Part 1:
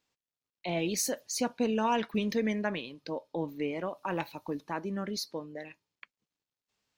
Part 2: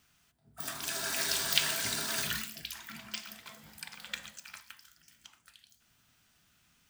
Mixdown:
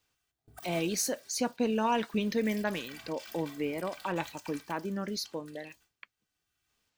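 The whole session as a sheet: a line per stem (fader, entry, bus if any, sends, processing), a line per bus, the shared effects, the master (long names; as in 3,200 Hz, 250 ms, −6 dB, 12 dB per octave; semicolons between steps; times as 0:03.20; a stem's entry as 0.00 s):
0.0 dB, 0.00 s, no send, no processing
0.0 dB, 0.00 s, no send, noise gate with hold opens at −54 dBFS; comb filter 2.6 ms, depth 82%; compressor whose output falls as the input rises −45 dBFS, ratio −1; automatic ducking −10 dB, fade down 1.55 s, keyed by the first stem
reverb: not used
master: no processing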